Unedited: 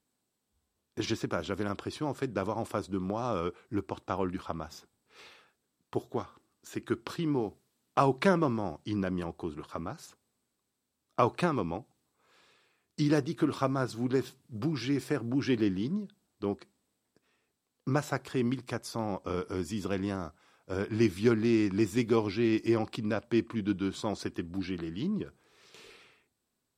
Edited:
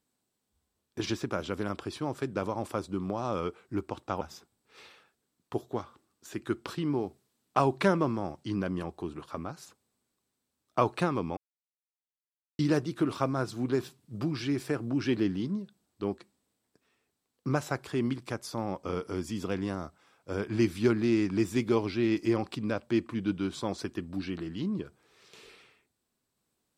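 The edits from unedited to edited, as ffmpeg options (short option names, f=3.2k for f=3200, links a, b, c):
-filter_complex "[0:a]asplit=4[a][b][c][d];[a]atrim=end=4.212[e];[b]atrim=start=4.618:end=11.78,asetpts=PTS-STARTPTS,afade=t=out:st=7.158:d=0.004:c=hsin[f];[c]atrim=start=11.78:end=13,asetpts=PTS-STARTPTS,volume=0[g];[d]atrim=start=13,asetpts=PTS-STARTPTS,afade=t=in:d=0.004:c=hsin[h];[f][g][h]concat=n=3:v=0:a=1[i];[e][i]acrossfade=d=0.004:c1=hsin:c2=hsin"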